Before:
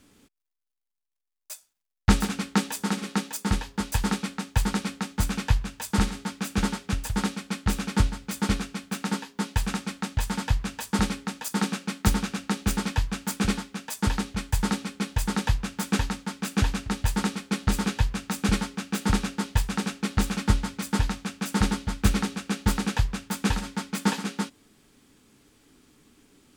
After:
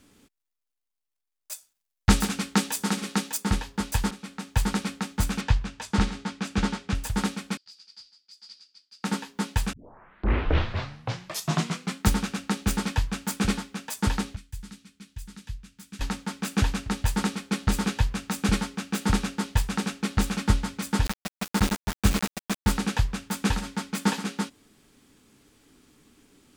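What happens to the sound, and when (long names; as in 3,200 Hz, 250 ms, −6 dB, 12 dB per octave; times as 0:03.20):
0:01.52–0:03.38: high-shelf EQ 3,400 Hz +4.5 dB
0:04.11–0:04.60: fade in, from −17 dB
0:05.41–0:06.95: low-pass filter 6,300 Hz
0:07.57–0:09.04: resonant band-pass 4,800 Hz, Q 16
0:09.73: tape start 2.29 s
0:14.36–0:16.01: guitar amp tone stack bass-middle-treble 6-0-2
0:21.05–0:22.69: centre clipping without the shift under −25.5 dBFS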